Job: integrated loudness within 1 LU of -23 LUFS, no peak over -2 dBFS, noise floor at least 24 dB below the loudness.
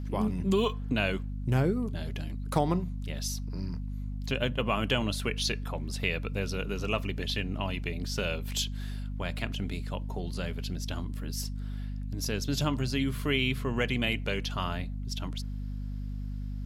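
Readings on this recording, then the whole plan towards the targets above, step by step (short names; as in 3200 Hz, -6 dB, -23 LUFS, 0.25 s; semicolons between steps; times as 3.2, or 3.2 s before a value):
hum 50 Hz; harmonics up to 250 Hz; hum level -33 dBFS; loudness -32.0 LUFS; peak -12.0 dBFS; loudness target -23.0 LUFS
-> notches 50/100/150/200/250 Hz; gain +9 dB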